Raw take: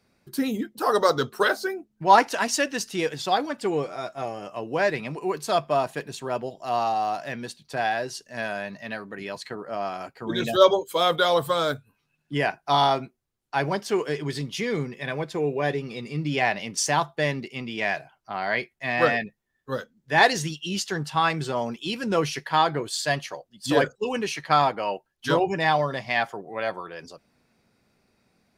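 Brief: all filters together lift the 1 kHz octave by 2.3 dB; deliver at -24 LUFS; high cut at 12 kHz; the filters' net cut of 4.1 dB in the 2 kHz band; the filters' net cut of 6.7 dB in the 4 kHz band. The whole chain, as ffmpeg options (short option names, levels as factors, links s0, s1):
-af "lowpass=12000,equalizer=f=1000:t=o:g=4.5,equalizer=f=2000:t=o:g=-5.5,equalizer=f=4000:t=o:g=-7,volume=1.12"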